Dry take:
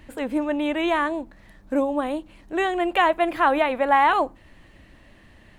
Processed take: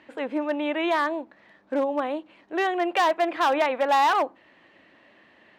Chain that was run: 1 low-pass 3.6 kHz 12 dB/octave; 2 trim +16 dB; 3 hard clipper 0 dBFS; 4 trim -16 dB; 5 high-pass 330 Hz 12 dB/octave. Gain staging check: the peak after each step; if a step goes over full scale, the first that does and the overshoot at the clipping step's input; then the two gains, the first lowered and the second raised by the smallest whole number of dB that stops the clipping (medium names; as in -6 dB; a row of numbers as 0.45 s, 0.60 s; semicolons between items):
-7.0 dBFS, +9.0 dBFS, 0.0 dBFS, -16.0 dBFS, -11.0 dBFS; step 2, 9.0 dB; step 2 +7 dB, step 4 -7 dB